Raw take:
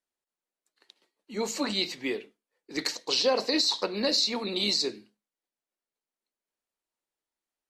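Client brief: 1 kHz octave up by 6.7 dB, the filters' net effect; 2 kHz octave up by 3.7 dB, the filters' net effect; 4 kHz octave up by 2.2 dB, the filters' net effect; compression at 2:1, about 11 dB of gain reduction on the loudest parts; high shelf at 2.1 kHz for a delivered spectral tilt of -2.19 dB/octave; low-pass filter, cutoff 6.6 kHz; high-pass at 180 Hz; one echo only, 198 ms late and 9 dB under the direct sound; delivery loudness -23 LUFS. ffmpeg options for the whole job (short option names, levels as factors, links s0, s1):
-af "highpass=180,lowpass=6600,equalizer=f=1000:t=o:g=8,equalizer=f=2000:t=o:g=3.5,highshelf=f=2100:g=-4,equalizer=f=4000:t=o:g=5.5,acompressor=threshold=0.0126:ratio=2,aecho=1:1:198:0.355,volume=3.55"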